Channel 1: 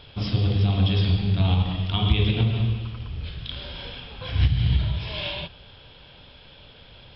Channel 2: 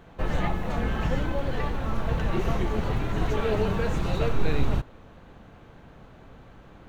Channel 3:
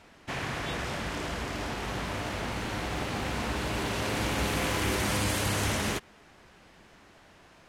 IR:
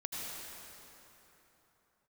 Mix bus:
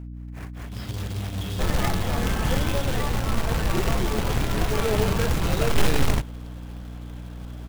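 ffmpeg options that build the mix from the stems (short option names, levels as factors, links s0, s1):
-filter_complex "[0:a]adelay=550,volume=0.282[s0];[1:a]adelay=1400,volume=1.19[s1];[2:a]lowpass=f=2600:w=0.5412,lowpass=f=2600:w=1.3066,lowshelf=f=190:g=8,tremolo=f=4.8:d=0.98,volume=0.376[s2];[s0][s1][s2]amix=inputs=3:normalize=0,acrusher=bits=2:mode=log:mix=0:aa=0.000001,aeval=exprs='val(0)+0.0178*(sin(2*PI*60*n/s)+sin(2*PI*2*60*n/s)/2+sin(2*PI*3*60*n/s)/3+sin(2*PI*4*60*n/s)/4+sin(2*PI*5*60*n/s)/5)':c=same"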